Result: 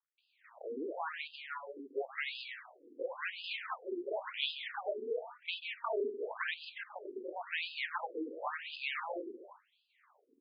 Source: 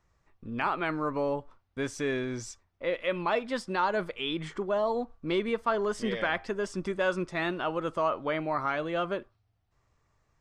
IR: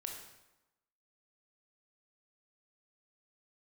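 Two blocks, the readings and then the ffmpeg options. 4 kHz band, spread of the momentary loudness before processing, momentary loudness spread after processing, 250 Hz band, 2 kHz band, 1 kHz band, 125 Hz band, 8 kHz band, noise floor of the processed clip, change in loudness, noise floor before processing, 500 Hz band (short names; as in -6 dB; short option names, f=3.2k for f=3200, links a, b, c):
-1.5 dB, 7 LU, 9 LU, -14.0 dB, -6.0 dB, -11.0 dB, under -40 dB, under -30 dB, -77 dBFS, -9.0 dB, -74 dBFS, -10.5 dB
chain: -filter_complex "[0:a]asubboost=boost=11.5:cutoff=64,acompressor=threshold=-39dB:ratio=6,acrossover=split=200|5100[a][b][c];[b]adelay=180[d];[c]adelay=470[e];[a][d][e]amix=inputs=3:normalize=0,aeval=exprs='abs(val(0))':c=same,asplit=2[f][g];[1:a]atrim=start_sample=2205,atrim=end_sample=3969,adelay=137[h];[g][h]afir=irnorm=-1:irlink=0,volume=-7.5dB[i];[f][i]amix=inputs=2:normalize=0,afftfilt=real='re*between(b*sr/1024,330*pow(3600/330,0.5+0.5*sin(2*PI*0.94*pts/sr))/1.41,330*pow(3600/330,0.5+0.5*sin(2*PI*0.94*pts/sr))*1.41)':imag='im*between(b*sr/1024,330*pow(3600/330,0.5+0.5*sin(2*PI*0.94*pts/sr))/1.41,330*pow(3600/330,0.5+0.5*sin(2*PI*0.94*pts/sr))*1.41)':win_size=1024:overlap=0.75,volume=13.5dB"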